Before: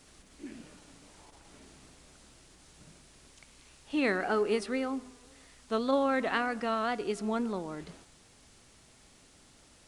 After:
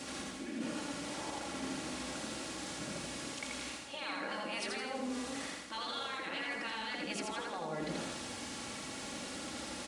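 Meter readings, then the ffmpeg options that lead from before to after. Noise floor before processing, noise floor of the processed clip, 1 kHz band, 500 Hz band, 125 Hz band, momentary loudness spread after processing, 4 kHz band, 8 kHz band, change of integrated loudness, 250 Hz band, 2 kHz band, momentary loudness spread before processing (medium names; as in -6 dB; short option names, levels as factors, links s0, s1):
-60 dBFS, -45 dBFS, -5.5 dB, -10.0 dB, -0.5 dB, 4 LU, +5.5 dB, +9.0 dB, -8.5 dB, -6.0 dB, -3.0 dB, 19 LU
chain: -af "highpass=130,afftfilt=real='re*lt(hypot(re,im),0.0708)':imag='im*lt(hypot(re,im),0.0708)':win_size=1024:overlap=0.75,highshelf=f=6700:g=-8,aecho=1:1:3.6:0.45,adynamicequalizer=threshold=0.00141:dfrequency=1200:dqfactor=2.4:tfrequency=1200:tqfactor=2.4:attack=5:release=100:ratio=0.375:range=3.5:mode=cutabove:tftype=bell,areverse,acompressor=threshold=0.002:ratio=12,areverse,aecho=1:1:83|166|249|332|415|498:0.708|0.304|0.131|0.0563|0.0242|0.0104,volume=6.31"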